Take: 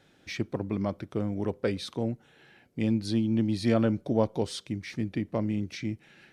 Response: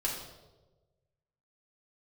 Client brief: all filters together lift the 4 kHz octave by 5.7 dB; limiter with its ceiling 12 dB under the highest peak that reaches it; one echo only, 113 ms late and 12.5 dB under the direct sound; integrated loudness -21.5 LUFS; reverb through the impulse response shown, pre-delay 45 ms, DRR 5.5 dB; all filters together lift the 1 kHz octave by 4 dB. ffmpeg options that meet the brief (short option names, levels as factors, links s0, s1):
-filter_complex "[0:a]equalizer=f=1000:t=o:g=5,equalizer=f=4000:t=o:g=6.5,alimiter=limit=0.0891:level=0:latency=1,aecho=1:1:113:0.237,asplit=2[s0][s1];[1:a]atrim=start_sample=2205,adelay=45[s2];[s1][s2]afir=irnorm=-1:irlink=0,volume=0.299[s3];[s0][s3]amix=inputs=2:normalize=0,volume=2.99"